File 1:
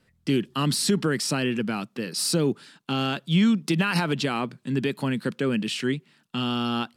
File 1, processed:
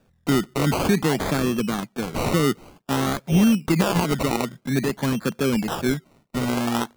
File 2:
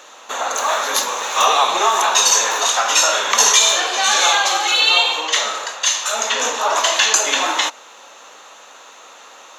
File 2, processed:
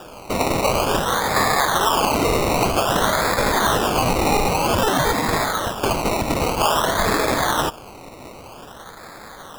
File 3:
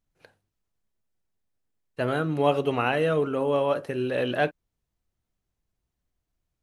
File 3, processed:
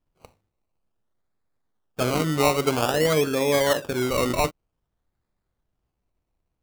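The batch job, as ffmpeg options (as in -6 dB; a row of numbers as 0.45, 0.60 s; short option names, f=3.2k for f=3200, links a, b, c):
-af "alimiter=limit=-12dB:level=0:latency=1:release=133,acrusher=samples=21:mix=1:aa=0.000001:lfo=1:lforange=12.6:lforate=0.52,volume=3dB"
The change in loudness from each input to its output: +2.5, -4.5, +3.0 LU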